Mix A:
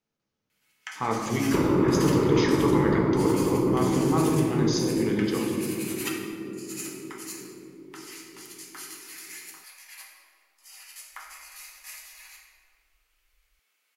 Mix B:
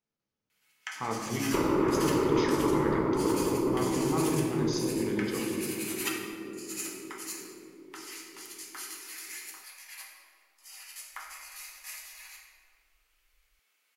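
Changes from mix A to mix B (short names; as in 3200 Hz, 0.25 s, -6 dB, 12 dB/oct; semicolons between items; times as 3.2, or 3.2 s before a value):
speech -6.0 dB; second sound: add bell 140 Hz -12 dB 1.8 oct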